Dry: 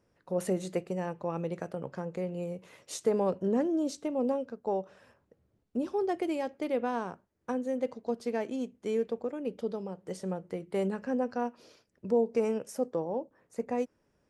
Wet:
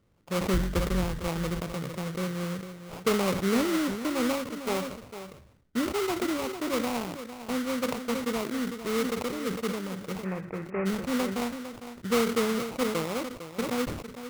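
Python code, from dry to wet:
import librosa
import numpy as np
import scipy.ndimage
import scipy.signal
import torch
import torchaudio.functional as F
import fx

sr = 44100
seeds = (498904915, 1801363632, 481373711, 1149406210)

p1 = fx.octave_divider(x, sr, octaves=2, level_db=-1.0, at=(0.53, 1.28))
p2 = fx.low_shelf(p1, sr, hz=250.0, db=10.5)
p3 = fx.sample_hold(p2, sr, seeds[0], rate_hz=1700.0, jitter_pct=20)
p4 = fx.cheby_ripple(p3, sr, hz=2600.0, ripple_db=3, at=(10.23, 10.85), fade=0.02)
p5 = p4 + fx.echo_single(p4, sr, ms=454, db=-11.5, dry=0)
p6 = fx.sustainer(p5, sr, db_per_s=66.0)
y = p6 * librosa.db_to_amplitude(-2.0)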